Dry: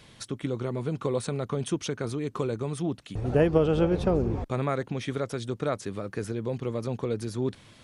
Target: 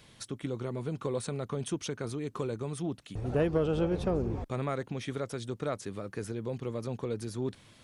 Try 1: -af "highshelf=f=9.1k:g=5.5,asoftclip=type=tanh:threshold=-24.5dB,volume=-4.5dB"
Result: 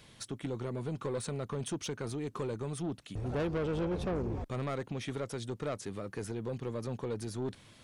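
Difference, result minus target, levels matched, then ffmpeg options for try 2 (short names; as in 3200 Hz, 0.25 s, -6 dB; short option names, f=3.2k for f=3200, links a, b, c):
soft clip: distortion +13 dB
-af "highshelf=f=9.1k:g=5.5,asoftclip=type=tanh:threshold=-13.5dB,volume=-4.5dB"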